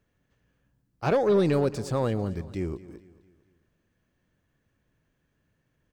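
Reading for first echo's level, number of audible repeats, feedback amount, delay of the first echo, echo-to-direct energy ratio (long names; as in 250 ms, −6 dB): −18.0 dB, 3, 45%, 224 ms, −17.0 dB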